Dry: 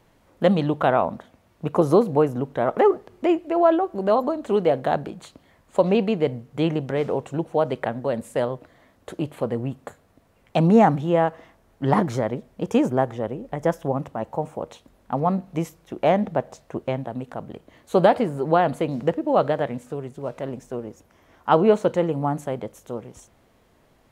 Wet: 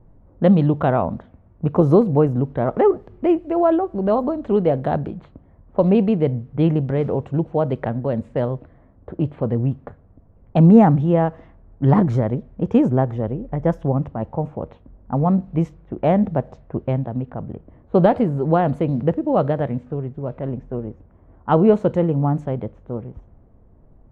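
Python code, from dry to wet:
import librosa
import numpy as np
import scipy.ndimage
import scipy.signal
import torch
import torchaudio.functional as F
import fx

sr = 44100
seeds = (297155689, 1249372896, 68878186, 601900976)

y = fx.env_lowpass(x, sr, base_hz=970.0, full_db=-19.5)
y = fx.riaa(y, sr, side='playback')
y = y * 10.0 ** (-1.5 / 20.0)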